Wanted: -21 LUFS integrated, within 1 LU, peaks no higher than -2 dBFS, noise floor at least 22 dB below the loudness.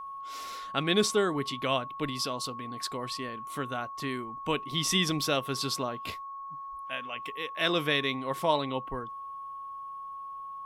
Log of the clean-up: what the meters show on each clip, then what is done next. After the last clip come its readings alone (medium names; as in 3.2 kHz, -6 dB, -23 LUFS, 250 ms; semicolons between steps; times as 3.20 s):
steady tone 1.1 kHz; tone level -38 dBFS; loudness -31.5 LUFS; peak level -12.0 dBFS; loudness target -21.0 LUFS
-> band-stop 1.1 kHz, Q 30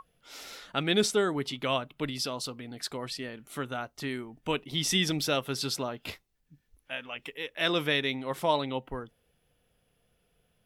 steady tone not found; loudness -31.0 LUFS; peak level -12.5 dBFS; loudness target -21.0 LUFS
-> trim +10 dB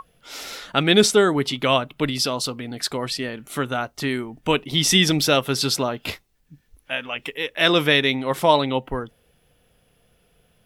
loudness -21.0 LUFS; peak level -2.5 dBFS; noise floor -63 dBFS